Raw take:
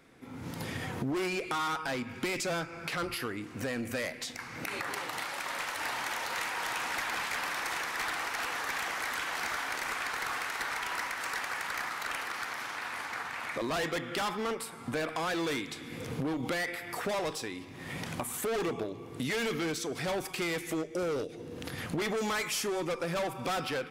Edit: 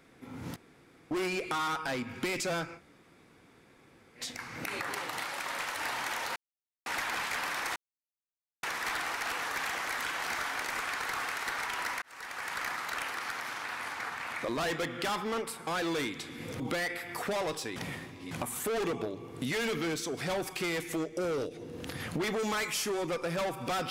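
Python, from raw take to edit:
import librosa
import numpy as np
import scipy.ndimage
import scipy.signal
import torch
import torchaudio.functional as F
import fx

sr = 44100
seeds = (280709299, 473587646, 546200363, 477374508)

y = fx.edit(x, sr, fx.room_tone_fill(start_s=0.56, length_s=0.55),
    fx.room_tone_fill(start_s=2.76, length_s=1.43, crossfade_s=0.1),
    fx.silence(start_s=6.36, length_s=0.5),
    fx.insert_silence(at_s=7.76, length_s=0.87),
    fx.fade_in_span(start_s=11.15, length_s=0.54),
    fx.cut(start_s=14.8, length_s=0.39),
    fx.cut(start_s=16.12, length_s=0.26),
    fx.reverse_span(start_s=17.54, length_s=0.55), tone=tone)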